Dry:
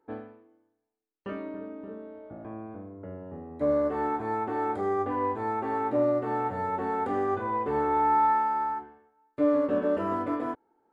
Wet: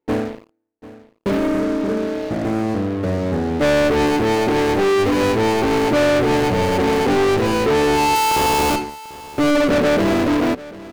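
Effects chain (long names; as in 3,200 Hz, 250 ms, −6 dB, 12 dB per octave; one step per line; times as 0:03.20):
running median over 41 samples
leveller curve on the samples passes 5
0:08.15–0:08.76: comparator with hysteresis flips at −26.5 dBFS
single-tap delay 742 ms −18.5 dB
level +4.5 dB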